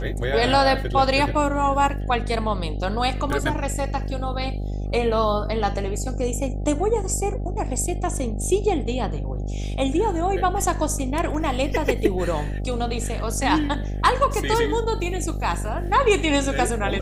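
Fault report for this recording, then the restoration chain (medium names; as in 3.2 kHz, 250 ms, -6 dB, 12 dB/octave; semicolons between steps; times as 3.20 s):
buzz 50 Hz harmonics 16 -27 dBFS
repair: de-hum 50 Hz, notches 16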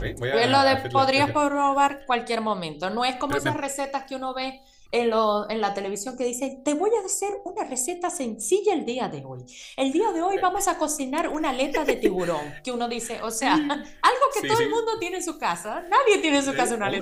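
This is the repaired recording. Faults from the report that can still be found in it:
nothing left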